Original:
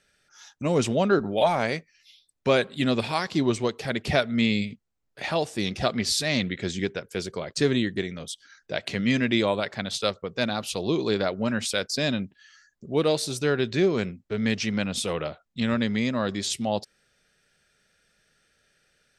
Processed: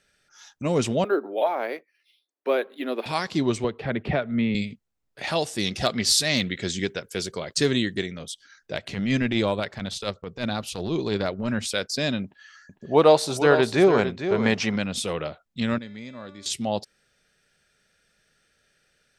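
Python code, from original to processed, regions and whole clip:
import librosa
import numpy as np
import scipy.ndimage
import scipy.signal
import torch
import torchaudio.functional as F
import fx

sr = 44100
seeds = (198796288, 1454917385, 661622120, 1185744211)

y = fx.chain(x, sr, fx.steep_highpass(hz=290.0, slope=36),
    fx.spacing_loss(db_at_10k=25),
    fx.resample_linear(factor=3), at=(1.04, 3.06))
y = fx.chain(y, sr, fx.air_absorb(metres=500.0),
    fx.band_squash(depth_pct=70), at=(3.64, 4.55))
y = fx.chain(y, sr, fx.high_shelf(hz=2900.0, db=7.0),
    fx.notch(hz=2400.0, q=29.0),
    fx.overload_stage(gain_db=9.0), at=(5.27, 8.06))
y = fx.chain(y, sr, fx.transient(attack_db=-11, sustain_db=-3),
    fx.low_shelf(hz=120.0, db=9.5), at=(8.74, 11.72))
y = fx.chain(y, sr, fx.peak_eq(hz=860.0, db=14.0, octaves=1.6),
    fx.echo_single(ms=452, db=-9.5), at=(12.24, 14.76))
y = fx.chain(y, sr, fx.notch(hz=2900.0, q=16.0),
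    fx.comb_fb(f0_hz=290.0, decay_s=1.1, harmonics='all', damping=0.0, mix_pct=80), at=(15.78, 16.46))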